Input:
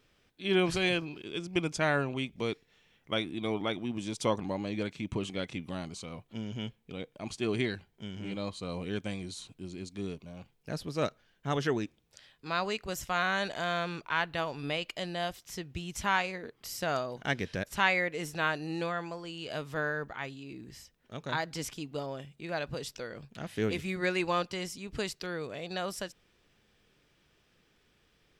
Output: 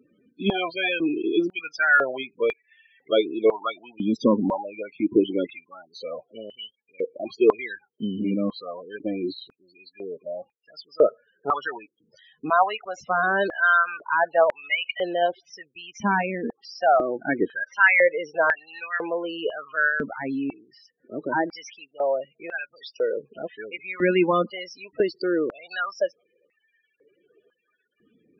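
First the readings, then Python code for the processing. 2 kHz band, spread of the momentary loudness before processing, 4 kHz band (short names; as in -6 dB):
+10.0 dB, 13 LU, +1.5 dB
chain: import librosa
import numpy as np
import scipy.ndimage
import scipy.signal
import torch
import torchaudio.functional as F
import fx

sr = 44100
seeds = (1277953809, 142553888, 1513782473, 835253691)

p1 = scipy.ndimage.median_filter(x, 5, mode='constant')
p2 = fx.level_steps(p1, sr, step_db=16)
p3 = p1 + F.gain(torch.from_numpy(p2), -0.5).numpy()
p4 = 10.0 ** (-20.0 / 20.0) * np.tanh(p3 / 10.0 ** (-20.0 / 20.0))
p5 = fx.spec_topn(p4, sr, count=16)
p6 = fx.filter_held_highpass(p5, sr, hz=2.0, low_hz=240.0, high_hz=1900.0)
y = F.gain(torch.from_numpy(p6), 6.0).numpy()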